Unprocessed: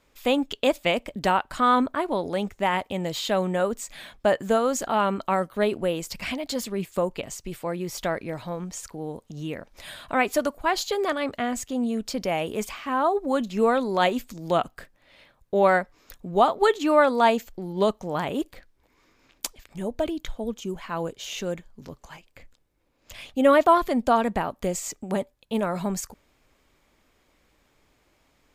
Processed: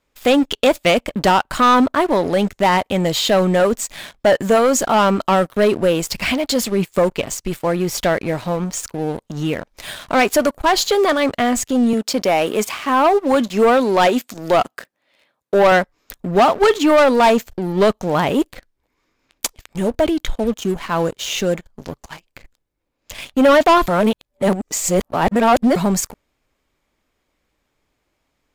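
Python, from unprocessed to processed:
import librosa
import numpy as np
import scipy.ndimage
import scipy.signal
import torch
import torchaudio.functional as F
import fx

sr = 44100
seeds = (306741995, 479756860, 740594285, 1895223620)

y = fx.highpass(x, sr, hz=220.0, slope=12, at=(11.93, 15.72))
y = fx.edit(y, sr, fx.reverse_span(start_s=23.88, length_s=1.88), tone=tone)
y = fx.leveller(y, sr, passes=3)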